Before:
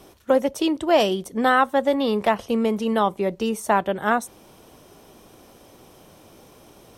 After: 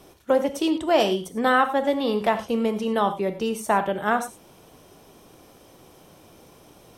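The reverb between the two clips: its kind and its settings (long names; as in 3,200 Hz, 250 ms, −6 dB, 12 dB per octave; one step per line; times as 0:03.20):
reverb whose tail is shaped and stops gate 130 ms flat, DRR 8.5 dB
level −2 dB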